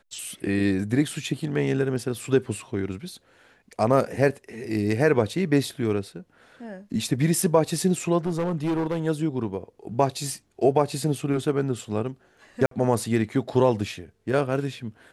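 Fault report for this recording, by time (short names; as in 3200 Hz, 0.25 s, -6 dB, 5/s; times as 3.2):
8.26–9.07 clipped -21.5 dBFS
12.66–12.71 gap 53 ms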